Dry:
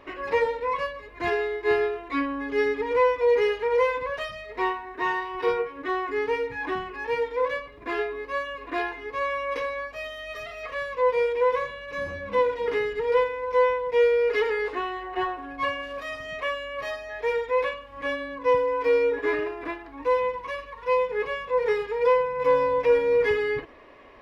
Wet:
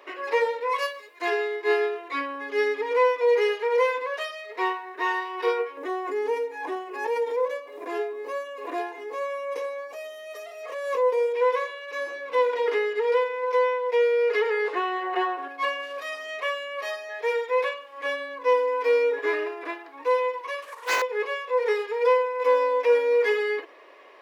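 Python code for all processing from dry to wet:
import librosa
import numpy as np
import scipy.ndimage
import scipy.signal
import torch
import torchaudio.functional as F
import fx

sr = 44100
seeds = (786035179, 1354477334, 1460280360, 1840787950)

y = fx.chain(x, sr, fx.high_shelf(hz=4100.0, db=12.0),
    fx.band_widen(depth_pct=70), at=(0.69, 1.22))
y = fx.chain(y, sr, fx.band_shelf(hz=2400.0, db=-9.0, octaves=2.4),
    fx.pre_swell(db_per_s=57.0), at=(5.77, 11.34))
y = fx.chain(y, sr, fx.high_shelf(hz=4300.0, db=-5.5),
    fx.band_squash(depth_pct=70), at=(12.53, 15.48))
y = fx.chain(y, sr, fx.cvsd(bps=64000),
    fx.doppler_dist(depth_ms=0.81), at=(20.62, 21.02))
y = scipy.signal.sosfilt(scipy.signal.butter(6, 340.0, 'highpass', fs=sr, output='sos'), y)
y = fx.high_shelf(y, sr, hz=4800.0, db=7.0)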